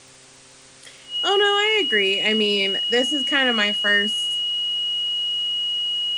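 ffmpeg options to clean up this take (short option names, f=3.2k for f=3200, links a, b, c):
-af "adeclick=t=4,bandreject=f=131.1:t=h:w=4,bandreject=f=262.2:t=h:w=4,bandreject=f=393.3:t=h:w=4,bandreject=f=524.4:t=h:w=4,bandreject=f=2.9k:w=30,afwtdn=0.0056"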